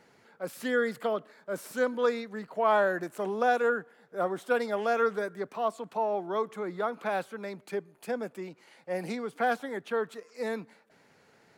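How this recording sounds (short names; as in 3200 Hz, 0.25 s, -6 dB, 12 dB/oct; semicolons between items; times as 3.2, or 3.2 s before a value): noise floor -63 dBFS; spectral tilt -3.0 dB/oct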